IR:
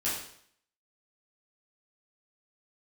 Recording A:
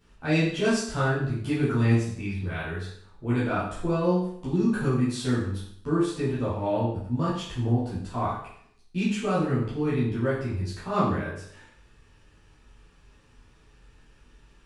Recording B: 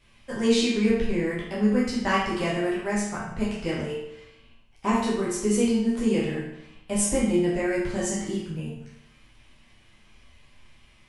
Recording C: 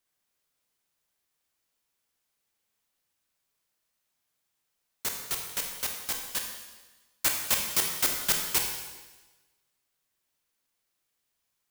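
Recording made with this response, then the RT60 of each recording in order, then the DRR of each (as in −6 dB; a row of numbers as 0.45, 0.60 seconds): A; 0.65, 0.80, 1.2 seconds; −10.0, −7.5, 1.5 decibels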